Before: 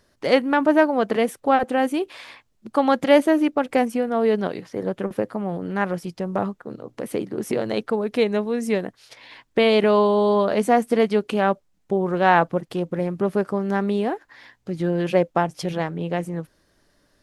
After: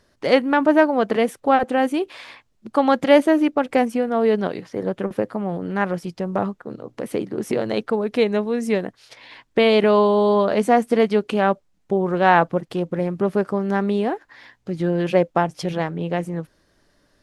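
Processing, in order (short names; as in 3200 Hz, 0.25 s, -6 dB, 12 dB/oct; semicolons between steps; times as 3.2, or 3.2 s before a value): high shelf 11000 Hz -8 dB; gain +1.5 dB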